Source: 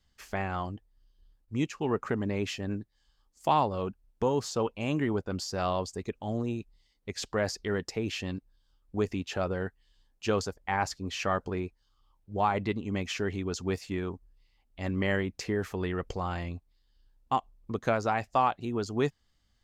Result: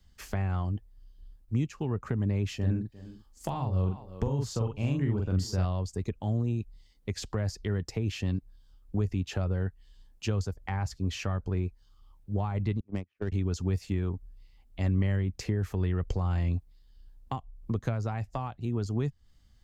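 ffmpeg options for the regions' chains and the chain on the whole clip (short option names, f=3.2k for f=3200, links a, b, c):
-filter_complex "[0:a]asettb=1/sr,asplit=3[a][b][c];[a]atrim=end=2.574[d];[b]atrim=start=2.57:end=5.65,asetpts=PTS-STARTPTS,afade=t=in:d=0.004:c=qsin,afade=t=out:st=3.076:d=0.004:c=qsin,asplit=2[e][f];[f]adelay=43,volume=-3dB[g];[e][g]amix=inputs=2:normalize=0,atrim=end_sample=135828,aecho=1:1:352:0.0794,atrim=end_sample=135828[h];[c]atrim=start=5.646[i];[d][h]acrossfade=d=0.004:c1=hsin:c2=qsin[j];[j][i]acrossfade=d=0.004:c1=qsin:c2=hsin,asettb=1/sr,asplit=3[k][l][m];[k]atrim=end=12.804[n];[l]atrim=start=12.8:end=13.32,asetpts=PTS-STARTPTS,afade=t=in:d=0.004:c=qsin,afade=t=out:st=0.516:d=0.004:c=qsin,agate=range=-38dB:threshold=-30dB:ratio=16:release=100:detection=peak,adynamicsmooth=sensitivity=5.5:basefreq=1.5k[o];[m]atrim=start=13.316[p];[n][o]acrossfade=d=0.004:c1=hsin:c2=qsin[q];[q][p]acrossfade=d=0.004:c1=qsin:c2=hsin,highshelf=f=7.4k:g=4.5,acrossover=split=130[r][s];[s]acompressor=threshold=-38dB:ratio=6[t];[r][t]amix=inputs=2:normalize=0,lowshelf=f=250:g=10,volume=2dB"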